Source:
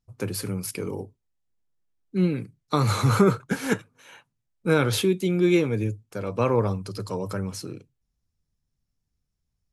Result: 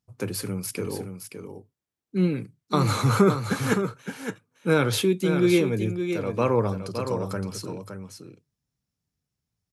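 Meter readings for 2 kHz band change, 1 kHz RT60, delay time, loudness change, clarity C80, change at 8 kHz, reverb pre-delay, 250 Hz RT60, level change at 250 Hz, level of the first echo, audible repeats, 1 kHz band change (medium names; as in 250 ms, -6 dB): +0.5 dB, no reverb, 566 ms, 0.0 dB, no reverb, +0.5 dB, no reverb, no reverb, +0.5 dB, -8.0 dB, 1, +0.5 dB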